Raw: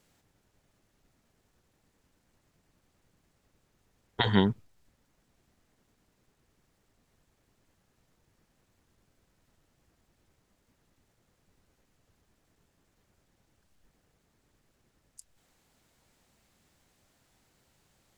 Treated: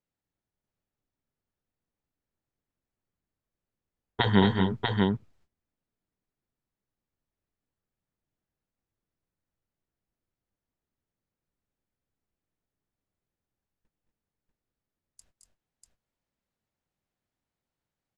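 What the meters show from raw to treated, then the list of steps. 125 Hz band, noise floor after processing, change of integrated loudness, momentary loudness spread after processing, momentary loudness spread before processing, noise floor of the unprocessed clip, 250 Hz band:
+5.0 dB, under -85 dBFS, +2.0 dB, 7 LU, 11 LU, -74 dBFS, +5.0 dB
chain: gate -60 dBFS, range -24 dB; LPF 3500 Hz 6 dB/oct; on a send: tapped delay 0.217/0.239/0.642 s -7/-6.5/-3.5 dB; on the sum: gain +2.5 dB

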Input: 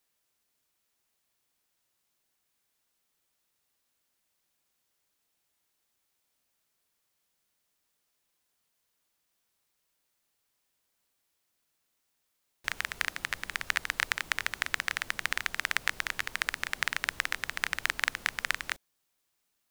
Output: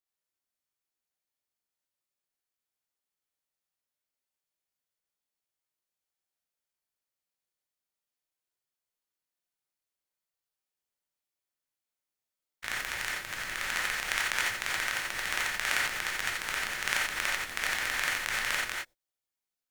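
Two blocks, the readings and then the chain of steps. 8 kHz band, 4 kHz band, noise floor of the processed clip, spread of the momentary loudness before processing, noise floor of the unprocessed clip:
+4.5 dB, +2.0 dB, under -85 dBFS, 4 LU, -79 dBFS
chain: stepped spectrum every 0.1 s; power-law curve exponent 1.4; non-linear reverb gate 0.11 s rising, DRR -3 dB; gain +8.5 dB

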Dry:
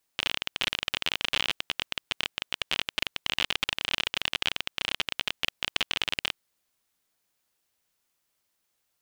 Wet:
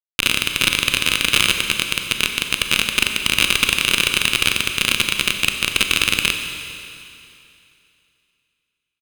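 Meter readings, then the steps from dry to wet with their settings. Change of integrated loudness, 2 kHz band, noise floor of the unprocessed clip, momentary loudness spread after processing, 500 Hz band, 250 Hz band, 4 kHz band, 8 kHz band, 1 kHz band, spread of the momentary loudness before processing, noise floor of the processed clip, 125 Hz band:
+12.0 dB, +13.0 dB, -77 dBFS, 5 LU, +10.5 dB, +15.5 dB, +10.5 dB, +19.5 dB, +9.5 dB, 5 LU, -78 dBFS, +16.5 dB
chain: high shelf 4300 Hz +7.5 dB; comb 0.8 ms, depth 30%; fuzz box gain 28 dB, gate -31 dBFS; vibrato 4.7 Hz 7.9 cents; Schroeder reverb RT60 2.7 s, combs from 30 ms, DRR 5 dB; gain +8 dB

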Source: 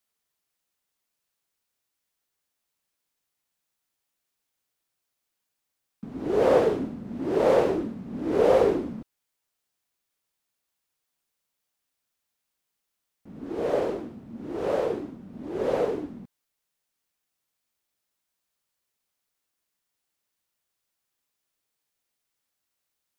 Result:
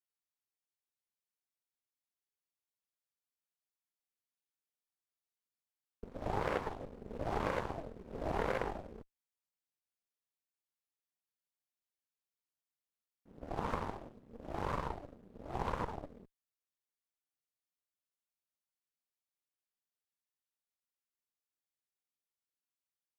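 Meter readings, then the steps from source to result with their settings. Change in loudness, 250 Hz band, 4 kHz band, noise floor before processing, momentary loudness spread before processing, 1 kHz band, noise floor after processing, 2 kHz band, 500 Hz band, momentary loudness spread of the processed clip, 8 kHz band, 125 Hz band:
-14.0 dB, -15.0 dB, -9.5 dB, -82 dBFS, 20 LU, -6.5 dB, under -85 dBFS, -5.5 dB, -18.0 dB, 18 LU, n/a, -5.0 dB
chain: added harmonics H 3 -10 dB, 6 -19 dB, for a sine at -7.5 dBFS; compressor 5:1, threshold -42 dBFS, peak gain reduction 21.5 dB; gain +8.5 dB

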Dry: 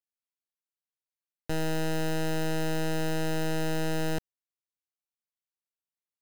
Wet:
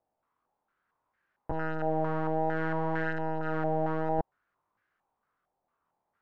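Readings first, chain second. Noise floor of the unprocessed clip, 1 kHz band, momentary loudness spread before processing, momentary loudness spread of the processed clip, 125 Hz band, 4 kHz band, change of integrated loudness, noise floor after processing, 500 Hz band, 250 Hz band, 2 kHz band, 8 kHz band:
under -85 dBFS, +6.0 dB, 3 LU, 6 LU, -3.0 dB, -18.5 dB, -0.5 dB, -83 dBFS, +1.0 dB, -2.5 dB, -0.5 dB, under -30 dB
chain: chorus 0.61 Hz, delay 18.5 ms, depth 5.9 ms; sine folder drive 18 dB, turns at -27 dBFS; stepped low-pass 4.4 Hz 750–1600 Hz

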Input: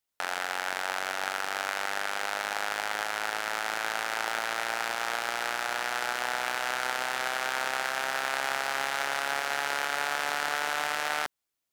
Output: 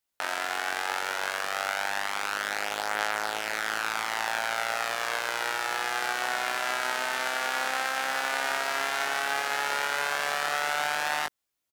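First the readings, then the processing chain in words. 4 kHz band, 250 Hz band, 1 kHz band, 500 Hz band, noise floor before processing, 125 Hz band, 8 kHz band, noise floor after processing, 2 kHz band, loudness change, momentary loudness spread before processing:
+1.5 dB, +1.0 dB, +1.5 dB, +1.5 dB, -84 dBFS, +1.0 dB, +1.5 dB, -83 dBFS, +1.5 dB, +1.5 dB, 2 LU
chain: doubler 19 ms -4 dB

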